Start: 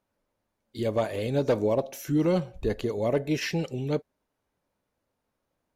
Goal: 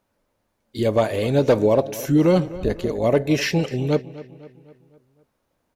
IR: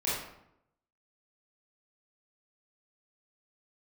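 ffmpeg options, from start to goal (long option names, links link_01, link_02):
-filter_complex "[0:a]asettb=1/sr,asplit=3[link_01][link_02][link_03];[link_01]atrim=end=2.464[link_04];[link_02]atrim=start=2.46:end=3.04,asetpts=PTS-STARTPTS,afade=type=in:duration=0.004:curve=qsin,afade=type=out:start_time=0.576:duration=0.004:curve=qsin,tremolo=f=160:d=0.667[link_05];[link_03]atrim=start=3.036[link_06];[link_04][link_05]acrossfade=duration=0.004:curve1=hsin:curve2=qsin[link_07];[link_07][link_06]acrossfade=duration=0.004:curve1=qsin:curve2=hsin,asplit=2[link_08][link_09];[link_09]adelay=253,lowpass=frequency=4100:poles=1,volume=-17dB,asplit=2[link_10][link_11];[link_11]adelay=253,lowpass=frequency=4100:poles=1,volume=0.52,asplit=2[link_12][link_13];[link_13]adelay=253,lowpass=frequency=4100:poles=1,volume=0.52,asplit=2[link_14][link_15];[link_15]adelay=253,lowpass=frequency=4100:poles=1,volume=0.52,asplit=2[link_16][link_17];[link_17]adelay=253,lowpass=frequency=4100:poles=1,volume=0.52[link_18];[link_10][link_12][link_14][link_16][link_18]amix=inputs=5:normalize=0[link_19];[link_08][link_19]amix=inputs=2:normalize=0,volume=7.5dB"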